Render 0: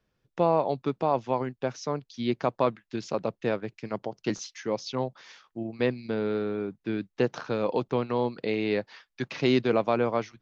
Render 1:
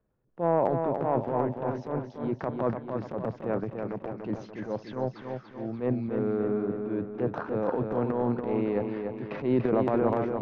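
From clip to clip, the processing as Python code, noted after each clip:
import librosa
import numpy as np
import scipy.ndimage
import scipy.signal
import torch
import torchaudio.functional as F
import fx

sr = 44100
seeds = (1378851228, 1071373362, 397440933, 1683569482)

y = scipy.signal.sosfilt(scipy.signal.butter(2, 1000.0, 'lowpass', fs=sr, output='sos'), x)
y = fx.transient(y, sr, attack_db=-9, sustain_db=9)
y = fx.echo_feedback(y, sr, ms=290, feedback_pct=50, wet_db=-5.5)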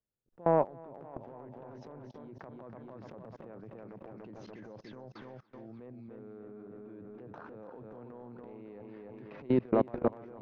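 y = fx.level_steps(x, sr, step_db=24)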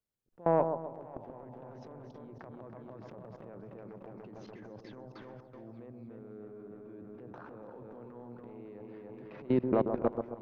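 y = fx.echo_bbd(x, sr, ms=132, stages=1024, feedback_pct=40, wet_db=-7)
y = F.gain(torch.from_numpy(y), -1.0).numpy()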